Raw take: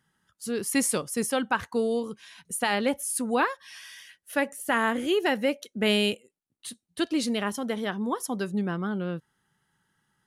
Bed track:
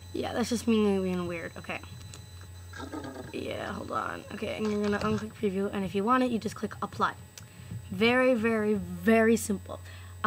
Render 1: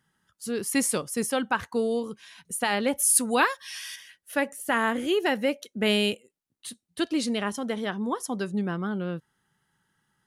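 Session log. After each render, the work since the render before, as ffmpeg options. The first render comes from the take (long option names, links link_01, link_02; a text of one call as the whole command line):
ffmpeg -i in.wav -filter_complex "[0:a]asettb=1/sr,asplit=3[link_01][link_02][link_03];[link_01]atrim=end=2.984[link_04];[link_02]atrim=start=2.98:end=3.96,asetpts=PTS-STARTPTS,afade=type=in:duration=0.004:curve=qsin,afade=type=out:start_time=0.976:duration=0.004:curve=qsin,highshelf=frequency=2000:gain=10[link_05];[link_03]atrim=start=3.956[link_06];[link_04][link_05]acrossfade=duration=0.004:curve1=hsin:curve2=qsin[link_07];[link_07][link_06]acrossfade=duration=0.004:curve1=qsin:curve2=hsin,asettb=1/sr,asplit=3[link_08][link_09][link_10];[link_08]atrim=end=7.214[link_11];[link_09]atrim=start=7.21:end=8.62,asetpts=PTS-STARTPTS,afade=type=in:duration=0.004:curve=qsin,afade=type=out:start_time=1.406:duration=0.004:curve=qsin,lowpass=frequency=11000:width=0.5412,lowpass=frequency=11000:width=1.3066[link_12];[link_10]atrim=start=8.616[link_13];[link_11][link_12]acrossfade=duration=0.004:curve1=hsin:curve2=qsin[link_14];[link_14][link_13]acrossfade=duration=0.004:curve1=qsin:curve2=hsin" out.wav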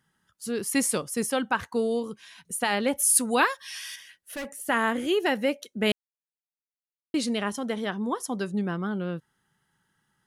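ffmpeg -i in.wav -filter_complex "[0:a]asettb=1/sr,asplit=3[link_01][link_02][link_03];[link_01]atrim=end=3.894[link_04];[link_02]atrim=start=3.89:end=4.47,asetpts=PTS-STARTPTS,afade=type=in:duration=0.004:curve=qsin,afade=type=out:start_time=0.576:duration=0.004:curve=qsin,volume=31.5dB,asoftclip=hard,volume=-31.5dB[link_05];[link_03]atrim=start=4.466[link_06];[link_04][link_05]acrossfade=duration=0.004:curve1=hsin:curve2=qsin[link_07];[link_07][link_06]acrossfade=duration=0.004:curve1=qsin:curve2=hsin,asplit=3[link_08][link_09][link_10];[link_08]atrim=end=5.92,asetpts=PTS-STARTPTS,afade=type=out:start_time=5.916:duration=0.004:curve=hsin[link_11];[link_09]atrim=start=5.92:end=7.14,asetpts=PTS-STARTPTS,volume=0[link_12];[link_10]atrim=start=7.14,asetpts=PTS-STARTPTS,afade=type=in:duration=0.004:curve=hsin[link_13];[link_11][link_12][link_13]concat=n=3:v=0:a=1" out.wav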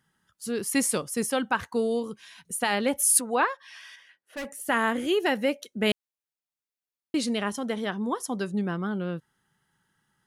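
ffmpeg -i in.wav -filter_complex "[0:a]asplit=3[link_01][link_02][link_03];[link_01]afade=type=out:start_time=3.19:duration=0.02[link_04];[link_02]bandpass=frequency=740:width_type=q:width=0.6,afade=type=in:start_time=3.19:duration=0.02,afade=type=out:start_time=4.36:duration=0.02[link_05];[link_03]afade=type=in:start_time=4.36:duration=0.02[link_06];[link_04][link_05][link_06]amix=inputs=3:normalize=0" out.wav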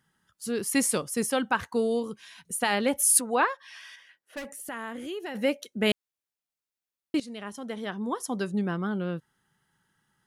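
ffmpeg -i in.wav -filter_complex "[0:a]asplit=3[link_01][link_02][link_03];[link_01]afade=type=out:start_time=4.38:duration=0.02[link_04];[link_02]acompressor=threshold=-38dB:ratio=2.5:attack=3.2:release=140:knee=1:detection=peak,afade=type=in:start_time=4.38:duration=0.02,afade=type=out:start_time=5.34:duration=0.02[link_05];[link_03]afade=type=in:start_time=5.34:duration=0.02[link_06];[link_04][link_05][link_06]amix=inputs=3:normalize=0,asplit=2[link_07][link_08];[link_07]atrim=end=7.2,asetpts=PTS-STARTPTS,afade=type=out:start_time=7.196:duration=0.004:curve=hsin:silence=0.158489[link_09];[link_08]atrim=start=7.2,asetpts=PTS-STARTPTS,afade=type=in:duration=1.19:silence=0.158489[link_10];[link_09][link_10]concat=n=2:v=0:a=1" out.wav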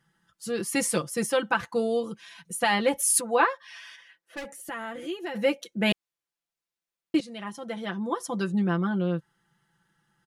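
ffmpeg -i in.wav -af "highshelf=frequency=8600:gain=-7.5,aecho=1:1:5.9:0.79" out.wav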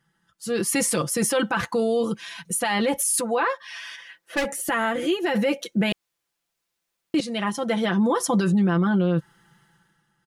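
ffmpeg -i in.wav -af "dynaudnorm=framelen=100:gausssize=13:maxgain=13.5dB,alimiter=limit=-14.5dB:level=0:latency=1:release=14" out.wav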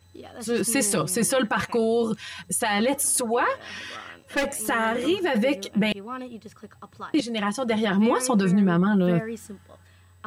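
ffmpeg -i in.wav -i bed.wav -filter_complex "[1:a]volume=-10dB[link_01];[0:a][link_01]amix=inputs=2:normalize=0" out.wav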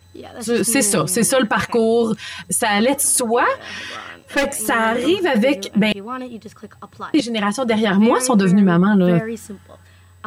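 ffmpeg -i in.wav -af "volume=6.5dB" out.wav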